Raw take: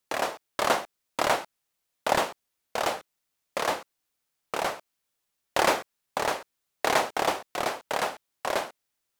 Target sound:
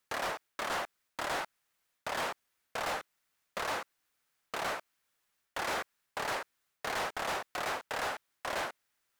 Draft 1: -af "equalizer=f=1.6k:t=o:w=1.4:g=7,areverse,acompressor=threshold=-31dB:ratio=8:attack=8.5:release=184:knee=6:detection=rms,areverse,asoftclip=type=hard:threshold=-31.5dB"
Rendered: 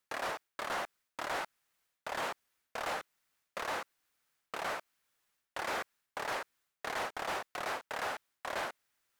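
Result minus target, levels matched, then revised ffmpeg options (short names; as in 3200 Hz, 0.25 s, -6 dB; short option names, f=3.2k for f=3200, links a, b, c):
compressor: peak gain reduction +6.5 dB
-af "equalizer=f=1.6k:t=o:w=1.4:g=7,areverse,acompressor=threshold=-23.5dB:ratio=8:attack=8.5:release=184:knee=6:detection=rms,areverse,asoftclip=type=hard:threshold=-31.5dB"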